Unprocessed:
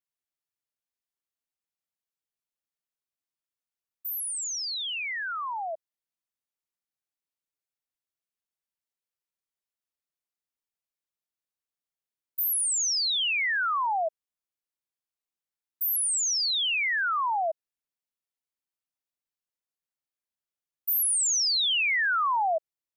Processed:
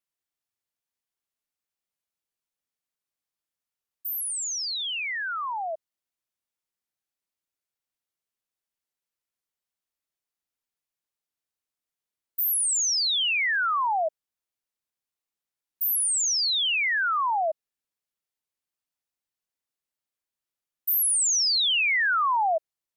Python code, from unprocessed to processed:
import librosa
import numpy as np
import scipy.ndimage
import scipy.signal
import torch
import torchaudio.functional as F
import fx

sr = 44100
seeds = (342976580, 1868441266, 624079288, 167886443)

y = fx.wow_flutter(x, sr, seeds[0], rate_hz=2.1, depth_cents=27.0)
y = y * librosa.db_to_amplitude(2.0)